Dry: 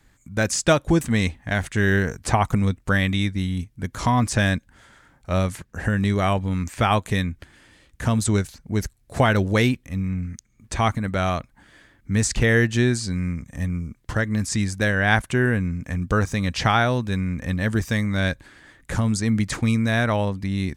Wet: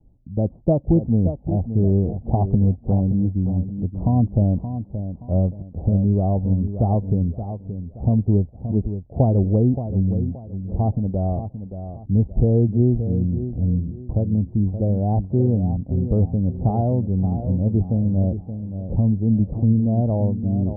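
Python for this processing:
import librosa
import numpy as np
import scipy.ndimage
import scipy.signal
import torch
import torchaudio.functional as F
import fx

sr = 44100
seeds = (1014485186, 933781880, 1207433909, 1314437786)

p1 = scipy.signal.sosfilt(scipy.signal.butter(8, 780.0, 'lowpass', fs=sr, output='sos'), x)
p2 = fx.low_shelf(p1, sr, hz=350.0, db=9.0)
p3 = p2 + fx.echo_feedback(p2, sr, ms=574, feedback_pct=32, wet_db=-10, dry=0)
y = p3 * librosa.db_to_amplitude(-4.0)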